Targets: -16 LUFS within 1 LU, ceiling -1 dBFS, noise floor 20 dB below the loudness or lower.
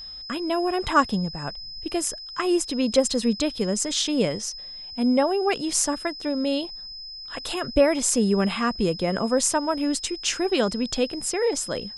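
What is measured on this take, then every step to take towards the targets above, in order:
steady tone 5100 Hz; tone level -36 dBFS; loudness -24.0 LUFS; peak -6.0 dBFS; loudness target -16.0 LUFS
-> notch 5100 Hz, Q 30; gain +8 dB; limiter -1 dBFS

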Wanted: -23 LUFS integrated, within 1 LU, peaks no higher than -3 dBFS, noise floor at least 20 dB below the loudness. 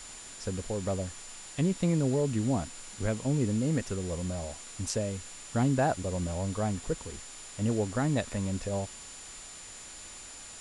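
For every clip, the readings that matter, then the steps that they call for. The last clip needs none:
steady tone 7100 Hz; tone level -47 dBFS; noise floor -46 dBFS; noise floor target -52 dBFS; loudness -31.5 LUFS; peak -15.5 dBFS; loudness target -23.0 LUFS
-> notch 7100 Hz, Q 30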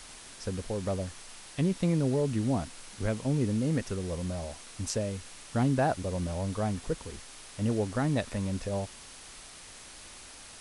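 steady tone none; noise floor -49 dBFS; noise floor target -52 dBFS
-> denoiser 6 dB, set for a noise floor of -49 dBFS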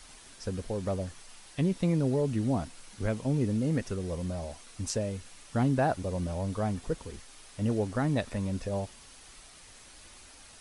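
noise floor -53 dBFS; loudness -31.5 LUFS; peak -15.5 dBFS; loudness target -23.0 LUFS
-> gain +8.5 dB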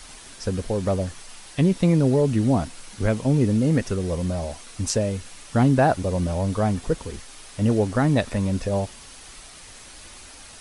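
loudness -23.0 LUFS; peak -7.0 dBFS; noise floor -44 dBFS

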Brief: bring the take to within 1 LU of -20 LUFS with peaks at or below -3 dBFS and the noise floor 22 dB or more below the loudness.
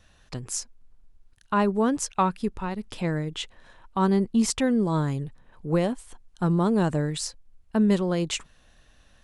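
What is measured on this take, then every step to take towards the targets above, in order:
loudness -26.0 LUFS; peak -10.5 dBFS; loudness target -20.0 LUFS
-> gain +6 dB

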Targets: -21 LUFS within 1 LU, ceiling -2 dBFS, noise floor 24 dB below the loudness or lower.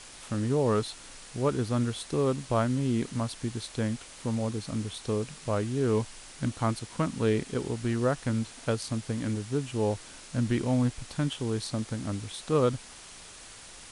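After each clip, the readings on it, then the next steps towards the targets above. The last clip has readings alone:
noise floor -48 dBFS; noise floor target -55 dBFS; loudness -30.5 LUFS; peak -14.0 dBFS; loudness target -21.0 LUFS
-> denoiser 7 dB, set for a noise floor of -48 dBFS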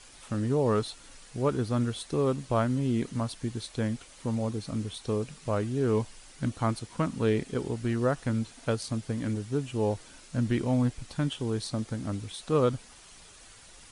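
noise floor -52 dBFS; noise floor target -55 dBFS
-> denoiser 6 dB, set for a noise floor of -52 dBFS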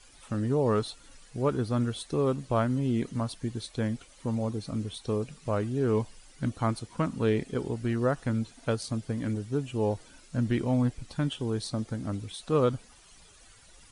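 noise floor -55 dBFS; loudness -30.5 LUFS; peak -14.0 dBFS; loudness target -21.0 LUFS
-> gain +9.5 dB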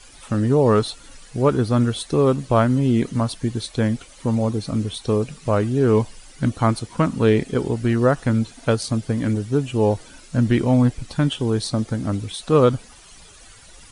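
loudness -21.0 LUFS; peak -4.5 dBFS; noise floor -46 dBFS

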